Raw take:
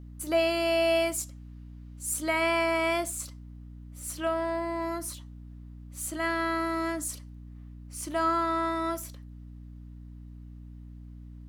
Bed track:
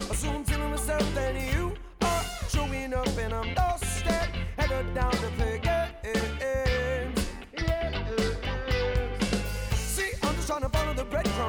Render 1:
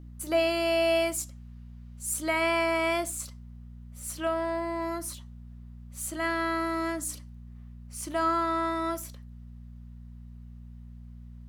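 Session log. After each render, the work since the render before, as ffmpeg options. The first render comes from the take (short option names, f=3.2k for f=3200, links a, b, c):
-af "bandreject=f=50:t=h:w=4,bandreject=f=100:t=h:w=4,bandreject=f=150:t=h:w=4,bandreject=f=200:t=h:w=4,bandreject=f=250:t=h:w=4,bandreject=f=300:t=h:w=4"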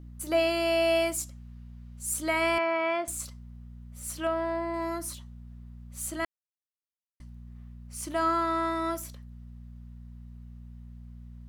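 -filter_complex "[0:a]asettb=1/sr,asplit=3[a][b][c];[a]atrim=end=2.584[d];[b]atrim=start=2.58:end=3.08,asetpts=PTS-STARTPTS,afade=t=in:d=0.004:c=qsin,afade=t=out:st=0.496:d=0.004:c=qsin,highpass=340,lowpass=2.5k[e];[c]atrim=start=3.076[f];[d][e]acrossfade=d=0.004:c1=hsin:c2=qsin[g];[g][f]acrossfade=d=0.004:c1=qsin:c2=hsin,asettb=1/sr,asplit=3[h][i][j];[h]atrim=end=4.274[k];[i]atrim=start=4.27:end=4.74,asetpts=PTS-STARTPTS,afade=t=in:d=0.004:c=qsin,afade=t=out:st=0.466:d=0.004:c=qsin,highshelf=f=6.3k:g=-12[l];[j]atrim=start=4.736[m];[k][l]acrossfade=d=0.004:c1=hsin:c2=qsin[n];[n][m]acrossfade=d=0.004:c1=qsin:c2=hsin,asplit=3[o][p][q];[o]atrim=end=6.25,asetpts=PTS-STARTPTS,afade=t=out:st=6.246:d=0.004:c=hsin[r];[p]atrim=start=6.25:end=7.2,asetpts=PTS-STARTPTS,volume=0[s];[q]atrim=start=7.2,asetpts=PTS-STARTPTS,afade=t=in:d=0.004:c=hsin[t];[r][s][t]concat=n=3:v=0:a=1"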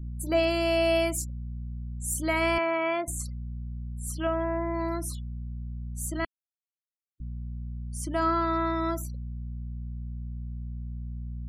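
-af "bass=f=250:g=10,treble=f=4k:g=0,afftfilt=real='re*gte(hypot(re,im),0.00708)':imag='im*gte(hypot(re,im),0.00708)':win_size=1024:overlap=0.75"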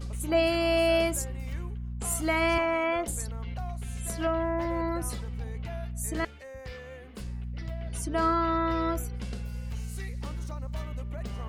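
-filter_complex "[1:a]volume=-15dB[a];[0:a][a]amix=inputs=2:normalize=0"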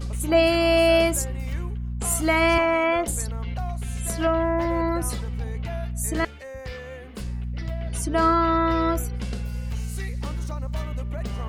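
-af "volume=6dB"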